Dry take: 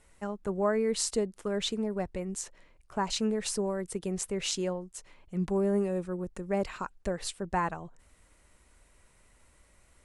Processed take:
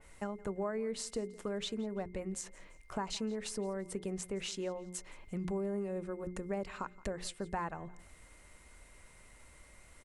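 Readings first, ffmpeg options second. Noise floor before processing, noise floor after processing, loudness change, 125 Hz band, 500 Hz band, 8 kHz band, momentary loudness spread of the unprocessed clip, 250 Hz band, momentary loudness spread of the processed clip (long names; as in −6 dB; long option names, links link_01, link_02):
−64 dBFS, −59 dBFS, −7.5 dB, −7.0 dB, −7.0 dB, −8.0 dB, 11 LU, −7.0 dB, 21 LU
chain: -filter_complex "[0:a]bandreject=frequency=60:width_type=h:width=6,bandreject=frequency=120:width_type=h:width=6,bandreject=frequency=180:width_type=h:width=6,bandreject=frequency=240:width_type=h:width=6,bandreject=frequency=300:width_type=h:width=6,bandreject=frequency=360:width_type=h:width=6,bandreject=frequency=420:width_type=h:width=6,acompressor=threshold=-42dB:ratio=3,aeval=exprs='val(0)+0.000282*sin(2*PI*2100*n/s)':channel_layout=same,asplit=2[link_01][link_02];[link_02]aecho=0:1:170|340:0.0841|0.0286[link_03];[link_01][link_03]amix=inputs=2:normalize=0,adynamicequalizer=threshold=0.001:dfrequency=3200:dqfactor=0.7:tfrequency=3200:tqfactor=0.7:attack=5:release=100:ratio=0.375:range=3:mode=cutabove:tftype=highshelf,volume=4dB"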